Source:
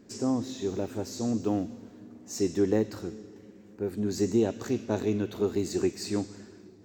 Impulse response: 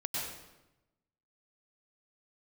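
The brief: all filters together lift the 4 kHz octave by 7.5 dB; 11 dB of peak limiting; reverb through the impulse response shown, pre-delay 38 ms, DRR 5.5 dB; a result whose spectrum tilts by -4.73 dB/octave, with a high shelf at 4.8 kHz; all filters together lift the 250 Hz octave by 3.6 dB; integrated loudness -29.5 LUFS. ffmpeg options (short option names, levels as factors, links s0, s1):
-filter_complex "[0:a]equalizer=f=250:t=o:g=4.5,equalizer=f=4000:t=o:g=7,highshelf=f=4800:g=4,alimiter=limit=0.0794:level=0:latency=1,asplit=2[s0][s1];[1:a]atrim=start_sample=2205,adelay=38[s2];[s1][s2]afir=irnorm=-1:irlink=0,volume=0.335[s3];[s0][s3]amix=inputs=2:normalize=0,volume=1.19"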